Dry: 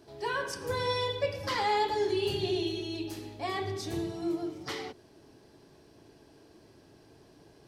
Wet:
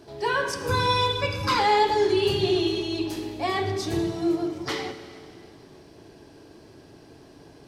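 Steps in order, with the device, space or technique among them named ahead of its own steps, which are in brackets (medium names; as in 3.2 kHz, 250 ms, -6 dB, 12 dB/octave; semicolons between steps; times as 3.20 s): treble shelf 8.4 kHz -4 dB; saturated reverb return (on a send at -9 dB: reverberation RT60 2.4 s, pre-delay 52 ms + saturation -32 dBFS, distortion -10 dB); 0.68–1.59 s: on the sum: comb 0.8 ms, depth 72%; trim +7.5 dB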